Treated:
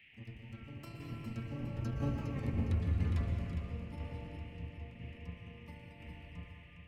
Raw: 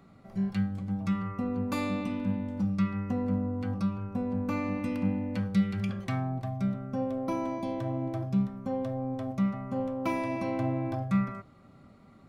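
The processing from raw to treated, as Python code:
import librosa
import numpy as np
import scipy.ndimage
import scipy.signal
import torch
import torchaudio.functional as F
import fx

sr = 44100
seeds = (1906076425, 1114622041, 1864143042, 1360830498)

p1 = fx.octave_divider(x, sr, octaves=1, level_db=2.0)
p2 = fx.doppler_pass(p1, sr, speed_mps=45, closest_m=5.9, pass_at_s=4.07)
p3 = fx.stretch_grains(p2, sr, factor=0.56, grain_ms=73.0)
p4 = fx.over_compress(p3, sr, threshold_db=-40.0, ratio=-0.5)
p5 = fx.peak_eq(p4, sr, hz=72.0, db=8.5, octaves=0.67)
p6 = fx.rev_plate(p5, sr, seeds[0], rt60_s=2.6, hf_ratio=0.6, predelay_ms=105, drr_db=3.5)
p7 = fx.dmg_noise_band(p6, sr, seeds[1], low_hz=1800.0, high_hz=2900.0, level_db=-69.0)
p8 = p7 + fx.echo_feedback(p7, sr, ms=409, feedback_pct=55, wet_db=-8, dry=0)
p9 = fx.tremolo_shape(p8, sr, shape='saw_down', hz=1.0, depth_pct=35)
p10 = fx.high_shelf(p9, sr, hz=3000.0, db=9.0)
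y = p10 * librosa.db_to_amplitude(4.5)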